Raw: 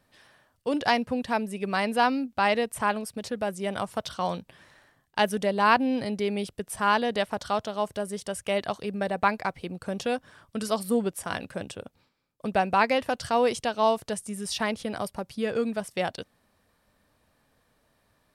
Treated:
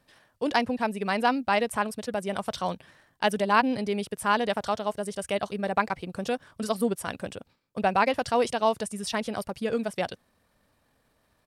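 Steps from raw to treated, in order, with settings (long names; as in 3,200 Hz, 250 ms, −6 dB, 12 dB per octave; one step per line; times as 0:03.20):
tempo change 1.6×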